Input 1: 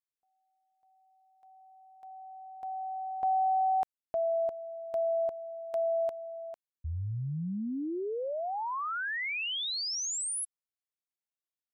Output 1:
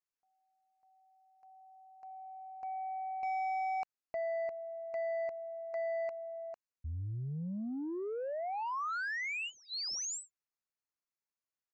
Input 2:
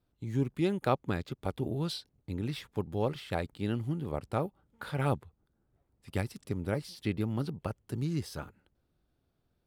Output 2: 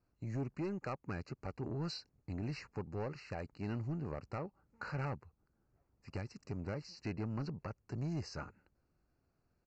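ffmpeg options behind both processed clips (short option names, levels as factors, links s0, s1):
-af "equalizer=f=1200:w=1.3:g=3.5,alimiter=limit=0.0841:level=0:latency=1:release=366,aresample=16000,asoftclip=type=tanh:threshold=0.0299,aresample=44100,asuperstop=centerf=3400:order=12:qfactor=2.9,volume=0.75"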